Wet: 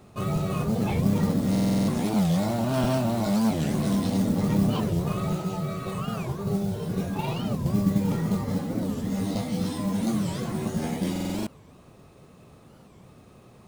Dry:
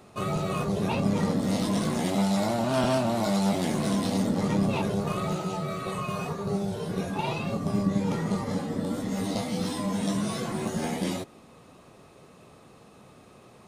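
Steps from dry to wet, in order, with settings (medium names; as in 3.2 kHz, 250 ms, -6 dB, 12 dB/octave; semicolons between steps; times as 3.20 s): modulation noise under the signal 19 dB; bass shelf 210 Hz +10.5 dB; buffer glitch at 1.51/11.11 s, samples 2048, times 7; warped record 45 rpm, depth 250 cents; trim -3 dB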